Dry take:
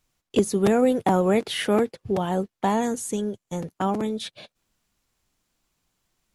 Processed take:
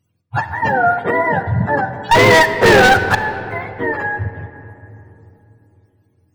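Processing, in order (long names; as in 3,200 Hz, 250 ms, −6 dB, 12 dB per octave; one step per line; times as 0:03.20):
frequency axis turned over on the octave scale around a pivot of 600 Hz
0:02.11–0:03.15: leveller curve on the samples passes 5
on a send: convolution reverb RT60 3.1 s, pre-delay 4 ms, DRR 9.5 dB
on the sum: level +6 dB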